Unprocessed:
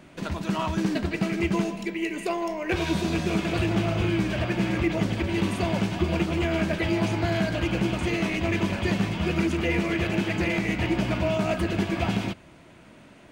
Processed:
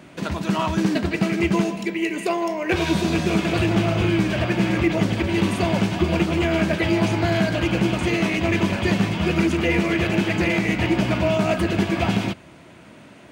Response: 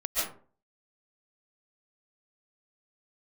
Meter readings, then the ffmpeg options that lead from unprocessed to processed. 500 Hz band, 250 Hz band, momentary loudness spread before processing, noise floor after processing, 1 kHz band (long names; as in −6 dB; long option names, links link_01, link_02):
+5.0 dB, +5.0 dB, 4 LU, −46 dBFS, +5.0 dB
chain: -af "highpass=73,volume=5dB"